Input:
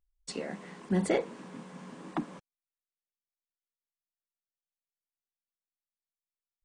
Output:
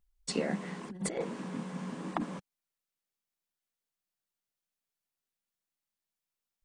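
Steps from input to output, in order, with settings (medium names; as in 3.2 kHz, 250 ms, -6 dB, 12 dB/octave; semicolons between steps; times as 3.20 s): peaking EQ 190 Hz +4.5 dB 0.75 oct; compressor with a negative ratio -31 dBFS, ratio -0.5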